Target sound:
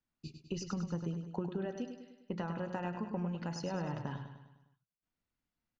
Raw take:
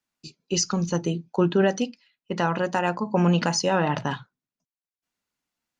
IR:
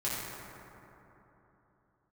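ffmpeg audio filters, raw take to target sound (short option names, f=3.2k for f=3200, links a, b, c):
-af "aemphasis=mode=reproduction:type=bsi,acompressor=threshold=-29dB:ratio=6,aecho=1:1:101|202|303|404|505|606:0.398|0.211|0.112|0.0593|0.0314|0.0166,volume=-7dB"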